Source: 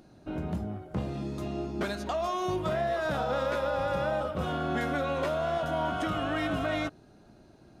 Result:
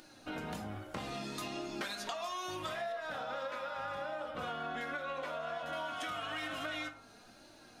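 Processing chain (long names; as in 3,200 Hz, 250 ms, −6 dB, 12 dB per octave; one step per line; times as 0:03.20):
0:02.92–0:05.73: high-shelf EQ 3,500 Hz −11.5 dB
flanger 1.2 Hz, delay 3.3 ms, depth 1.2 ms, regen +42%
tilt shelving filter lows −9.5 dB, about 720 Hz
hum removal 54.86 Hz, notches 26
convolution reverb RT60 0.35 s, pre-delay 7 ms, DRR 7 dB
downward compressor 10 to 1, threshold −41 dBFS, peak gain reduction 15 dB
level +4.5 dB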